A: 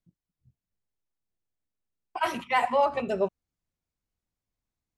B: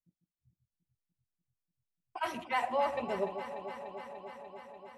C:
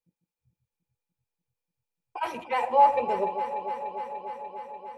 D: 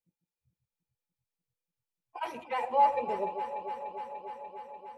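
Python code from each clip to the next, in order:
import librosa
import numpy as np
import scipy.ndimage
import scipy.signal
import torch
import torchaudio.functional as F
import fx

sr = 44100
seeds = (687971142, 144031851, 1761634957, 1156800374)

y1 = fx.noise_reduce_blind(x, sr, reduce_db=7)
y1 = fx.echo_alternate(y1, sr, ms=147, hz=800.0, feedback_pct=88, wet_db=-9.0)
y1 = F.gain(torch.from_numpy(y1), -7.5).numpy()
y2 = fx.small_body(y1, sr, hz=(490.0, 850.0, 2400.0), ring_ms=50, db=16)
y3 = fx.spec_quant(y2, sr, step_db=15)
y3 = F.gain(torch.from_numpy(y3), -5.0).numpy()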